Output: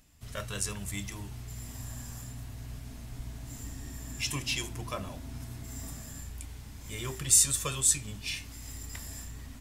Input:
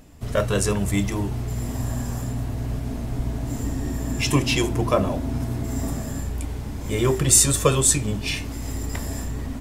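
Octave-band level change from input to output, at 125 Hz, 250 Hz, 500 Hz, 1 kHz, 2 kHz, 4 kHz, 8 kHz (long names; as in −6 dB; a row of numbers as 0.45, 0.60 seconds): −15.0, −18.5, −20.0, −14.5, −9.5, −7.0, −6.0 decibels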